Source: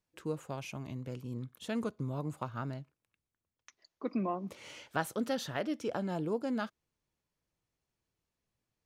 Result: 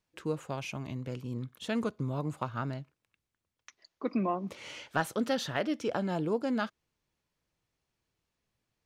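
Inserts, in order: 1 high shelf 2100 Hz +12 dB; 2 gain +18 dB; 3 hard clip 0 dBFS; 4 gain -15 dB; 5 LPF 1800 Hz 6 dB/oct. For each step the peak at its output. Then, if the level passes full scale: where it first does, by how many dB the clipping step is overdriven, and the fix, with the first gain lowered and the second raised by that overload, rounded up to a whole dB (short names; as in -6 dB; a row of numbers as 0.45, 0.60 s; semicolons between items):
-12.5, +5.5, 0.0, -15.0, -16.0 dBFS; step 2, 5.5 dB; step 2 +12 dB, step 4 -9 dB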